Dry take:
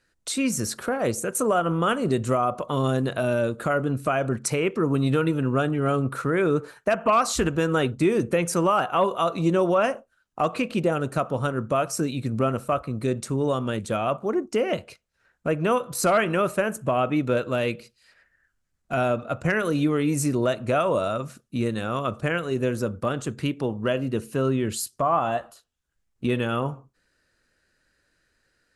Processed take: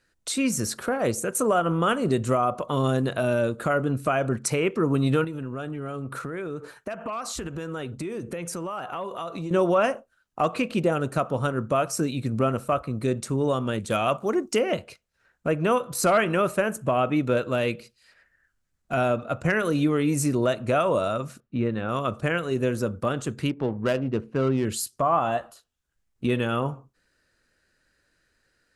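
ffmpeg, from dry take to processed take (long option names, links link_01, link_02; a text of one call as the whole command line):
ffmpeg -i in.wav -filter_complex "[0:a]asettb=1/sr,asplit=3[link_01][link_02][link_03];[link_01]atrim=end=5.244[link_04];[link_02]atrim=start=5.24:end=9.51,asetpts=PTS-STARTPTS,afade=type=in:duration=0.004:curve=qsin,afade=type=out:start_time=4.266:duration=0.004:curve=qsin,acompressor=threshold=-30dB:ratio=5:attack=3.2:release=140:knee=1:detection=peak[link_05];[link_03]atrim=start=9.506[link_06];[link_04][link_05]acrossfade=duration=0.004:curve1=hsin:curve2=qsin[link_07];[link_07][link_06]acrossfade=duration=0.004:curve1=qsin:curve2=hsin,asettb=1/sr,asplit=3[link_08][link_09][link_10];[link_08]atrim=end=13.904[link_11];[link_09]atrim=start=13.9:end=14.59,asetpts=PTS-STARTPTS,afade=type=in:duration=0.004:curve=qsin,afade=type=out:start_time=0.686:duration=0.004:curve=qsin,highshelf=frequency=2300:gain=9.5[link_12];[link_10]atrim=start=14.586[link_13];[link_11][link_12]acrossfade=duration=0.004:curve1=hsin:curve2=qsin[link_14];[link_14][link_13]acrossfade=duration=0.004:curve1=qsin:curve2=hsin,asettb=1/sr,asplit=3[link_15][link_16][link_17];[link_15]atrim=end=21.404[link_18];[link_16]atrim=start=21.4:end=21.89,asetpts=PTS-STARTPTS,afade=type=in:duration=0.004:curve=qsin,afade=type=out:start_time=0.486:duration=0.004:curve=qsin,lowpass=2300[link_19];[link_17]atrim=start=21.886[link_20];[link_18][link_19]acrossfade=duration=0.004:curve1=hsin:curve2=qsin[link_21];[link_21][link_20]acrossfade=duration=0.004:curve1=qsin:curve2=hsin,asettb=1/sr,asplit=3[link_22][link_23][link_24];[link_22]atrim=end=23.494[link_25];[link_23]atrim=start=23.49:end=24.65,asetpts=PTS-STARTPTS,afade=type=in:duration=0.004:curve=qsin,afade=type=out:start_time=1.156:duration=0.004:curve=qsin,adynamicsmooth=sensitivity=4:basefreq=1100[link_26];[link_24]atrim=start=24.646[link_27];[link_25][link_26]acrossfade=duration=0.004:curve1=hsin:curve2=qsin[link_28];[link_28][link_27]acrossfade=duration=0.004:curve1=qsin:curve2=hsin" out.wav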